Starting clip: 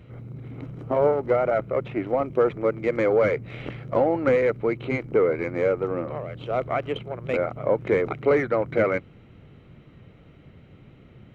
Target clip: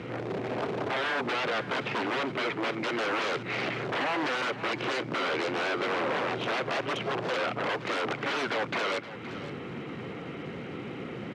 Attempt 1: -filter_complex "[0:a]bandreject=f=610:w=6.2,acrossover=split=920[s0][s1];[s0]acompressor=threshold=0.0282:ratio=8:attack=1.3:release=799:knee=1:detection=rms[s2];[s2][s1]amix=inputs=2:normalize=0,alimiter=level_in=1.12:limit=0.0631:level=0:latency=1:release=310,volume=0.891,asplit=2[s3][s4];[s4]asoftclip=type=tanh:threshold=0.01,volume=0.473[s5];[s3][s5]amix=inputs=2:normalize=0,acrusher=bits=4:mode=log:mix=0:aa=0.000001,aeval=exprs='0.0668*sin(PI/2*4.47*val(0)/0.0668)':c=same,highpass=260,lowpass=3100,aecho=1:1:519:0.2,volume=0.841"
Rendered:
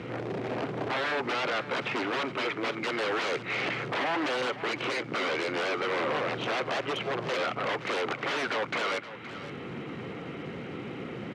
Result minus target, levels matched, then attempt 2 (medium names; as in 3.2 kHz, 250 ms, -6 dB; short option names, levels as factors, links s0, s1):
compression: peak gain reduction +5.5 dB
-filter_complex "[0:a]bandreject=f=610:w=6.2,acrossover=split=920[s0][s1];[s0]acompressor=threshold=0.0596:ratio=8:attack=1.3:release=799:knee=1:detection=rms[s2];[s2][s1]amix=inputs=2:normalize=0,alimiter=level_in=1.12:limit=0.0631:level=0:latency=1:release=310,volume=0.891,asplit=2[s3][s4];[s4]asoftclip=type=tanh:threshold=0.01,volume=0.473[s5];[s3][s5]amix=inputs=2:normalize=0,acrusher=bits=4:mode=log:mix=0:aa=0.000001,aeval=exprs='0.0668*sin(PI/2*4.47*val(0)/0.0668)':c=same,highpass=260,lowpass=3100,aecho=1:1:519:0.2,volume=0.841"